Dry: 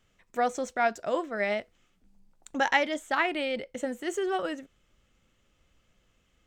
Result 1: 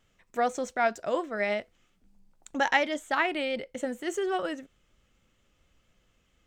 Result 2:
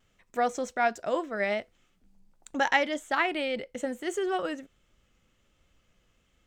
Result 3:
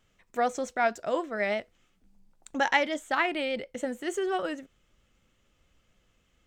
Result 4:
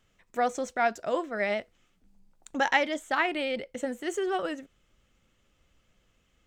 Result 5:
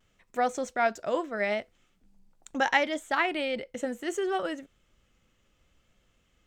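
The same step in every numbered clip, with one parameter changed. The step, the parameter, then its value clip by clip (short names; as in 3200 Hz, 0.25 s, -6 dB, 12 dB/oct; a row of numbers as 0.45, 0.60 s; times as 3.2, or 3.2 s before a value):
vibrato, rate: 4.3, 1.3, 6.6, 13, 0.71 Hz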